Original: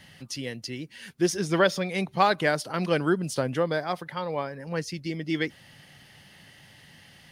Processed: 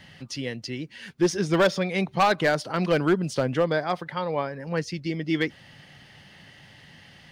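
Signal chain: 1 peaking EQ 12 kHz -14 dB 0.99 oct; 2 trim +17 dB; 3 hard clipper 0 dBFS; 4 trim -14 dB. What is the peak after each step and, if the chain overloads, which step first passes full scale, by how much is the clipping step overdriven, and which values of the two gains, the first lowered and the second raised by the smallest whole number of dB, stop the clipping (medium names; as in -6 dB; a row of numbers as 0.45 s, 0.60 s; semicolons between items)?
-8.0 dBFS, +9.0 dBFS, 0.0 dBFS, -14.0 dBFS; step 2, 9.0 dB; step 2 +8 dB, step 4 -5 dB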